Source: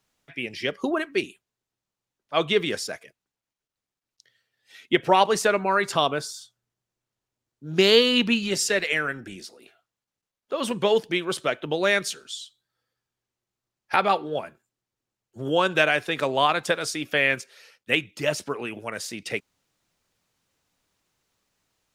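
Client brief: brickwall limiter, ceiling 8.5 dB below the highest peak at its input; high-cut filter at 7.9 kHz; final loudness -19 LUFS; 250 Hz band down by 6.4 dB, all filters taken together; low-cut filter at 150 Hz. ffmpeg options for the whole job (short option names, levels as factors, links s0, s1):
-af "highpass=150,lowpass=7900,equalizer=f=250:t=o:g=-8.5,volume=2.51,alimiter=limit=0.596:level=0:latency=1"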